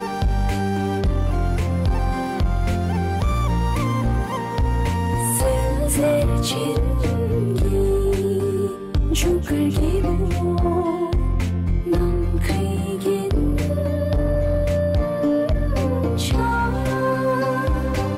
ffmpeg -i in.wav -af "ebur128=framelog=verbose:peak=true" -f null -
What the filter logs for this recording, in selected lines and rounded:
Integrated loudness:
  I:         -21.4 LUFS
  Threshold: -31.4 LUFS
Loudness range:
  LRA:         1.6 LU
  Threshold: -41.4 LUFS
  LRA low:   -22.2 LUFS
  LRA high:  -20.6 LUFS
True peak:
  Peak:      -10.2 dBFS